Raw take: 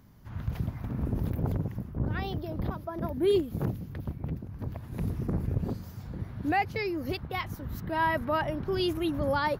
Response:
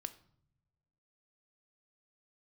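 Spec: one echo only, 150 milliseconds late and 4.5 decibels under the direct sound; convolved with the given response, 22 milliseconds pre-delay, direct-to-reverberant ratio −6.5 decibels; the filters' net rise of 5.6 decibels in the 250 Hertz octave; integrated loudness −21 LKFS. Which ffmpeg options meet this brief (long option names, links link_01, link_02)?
-filter_complex "[0:a]equalizer=frequency=250:width_type=o:gain=8,aecho=1:1:150:0.596,asplit=2[link_01][link_02];[1:a]atrim=start_sample=2205,adelay=22[link_03];[link_02][link_03]afir=irnorm=-1:irlink=0,volume=9.5dB[link_04];[link_01][link_04]amix=inputs=2:normalize=0,volume=-1.5dB"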